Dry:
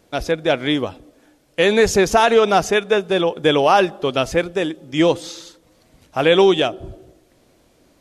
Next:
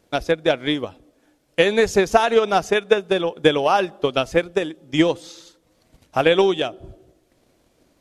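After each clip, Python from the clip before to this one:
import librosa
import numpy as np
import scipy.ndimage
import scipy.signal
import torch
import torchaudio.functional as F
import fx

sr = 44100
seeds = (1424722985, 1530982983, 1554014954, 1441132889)

y = fx.transient(x, sr, attack_db=8, sustain_db=-2)
y = y * 10.0 ** (-5.5 / 20.0)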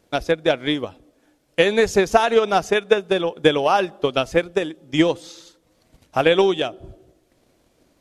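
y = x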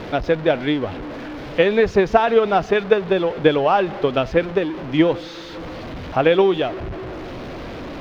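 y = x + 0.5 * 10.0 ** (-25.0 / 20.0) * np.sign(x)
y = fx.air_absorb(y, sr, metres=290.0)
y = y * 10.0 ** (1.0 / 20.0)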